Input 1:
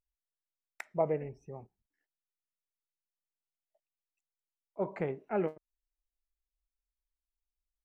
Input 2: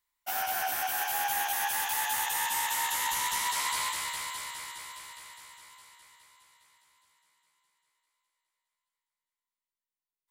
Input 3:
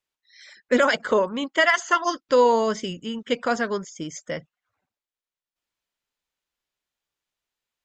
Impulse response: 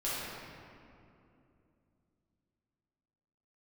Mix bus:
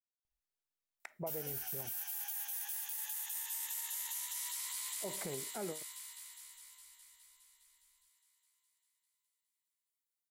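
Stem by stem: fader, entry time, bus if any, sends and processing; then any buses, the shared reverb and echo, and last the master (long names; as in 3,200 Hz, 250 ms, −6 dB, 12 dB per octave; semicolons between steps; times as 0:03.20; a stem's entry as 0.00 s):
−1.0 dB, 0.25 s, no send, downward compressor, threshold −34 dBFS, peak gain reduction 10.5 dB
−1.0 dB, 1.00 s, no send, first-order pre-emphasis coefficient 0.97; downward compressor 3 to 1, threshold −37 dBFS, peak gain reduction 8 dB
muted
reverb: not used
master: brickwall limiter −30.5 dBFS, peak gain reduction 7 dB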